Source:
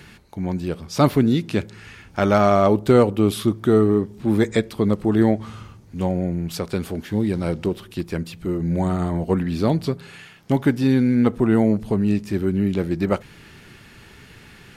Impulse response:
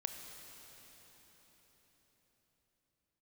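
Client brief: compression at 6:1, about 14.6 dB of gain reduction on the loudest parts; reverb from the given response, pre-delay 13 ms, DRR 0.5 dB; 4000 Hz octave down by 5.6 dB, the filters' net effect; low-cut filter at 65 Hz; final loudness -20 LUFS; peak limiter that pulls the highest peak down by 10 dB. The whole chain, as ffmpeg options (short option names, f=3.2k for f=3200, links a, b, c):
-filter_complex "[0:a]highpass=65,equalizer=f=4k:t=o:g=-7,acompressor=threshold=-27dB:ratio=6,alimiter=limit=-21dB:level=0:latency=1,asplit=2[a][b];[1:a]atrim=start_sample=2205,adelay=13[c];[b][c]afir=irnorm=-1:irlink=0,volume=0dB[d];[a][d]amix=inputs=2:normalize=0,volume=11dB"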